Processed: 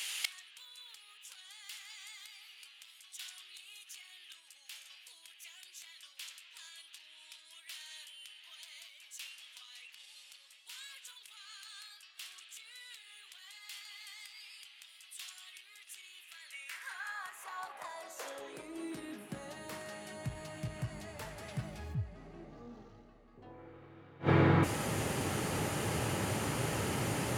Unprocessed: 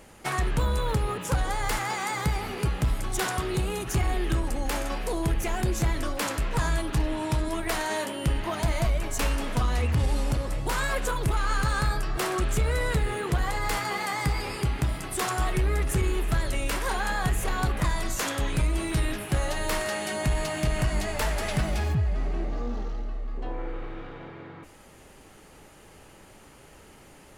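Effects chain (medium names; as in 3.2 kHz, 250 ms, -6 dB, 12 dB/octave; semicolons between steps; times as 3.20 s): inverted gate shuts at -31 dBFS, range -32 dB; high-pass sweep 3.1 kHz -> 110 Hz, 16.16–20.08 s; trim +15.5 dB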